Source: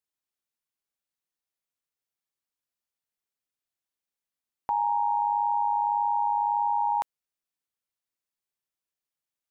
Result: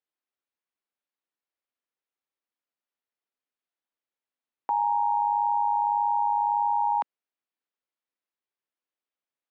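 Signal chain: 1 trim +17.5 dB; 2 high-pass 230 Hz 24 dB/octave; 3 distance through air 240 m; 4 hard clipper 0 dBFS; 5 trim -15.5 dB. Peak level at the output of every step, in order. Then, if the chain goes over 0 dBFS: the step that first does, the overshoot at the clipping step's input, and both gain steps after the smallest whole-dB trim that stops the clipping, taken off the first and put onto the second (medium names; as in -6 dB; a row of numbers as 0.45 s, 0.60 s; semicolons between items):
-2.0 dBFS, -1.5 dBFS, -2.5 dBFS, -2.5 dBFS, -18.0 dBFS; nothing clips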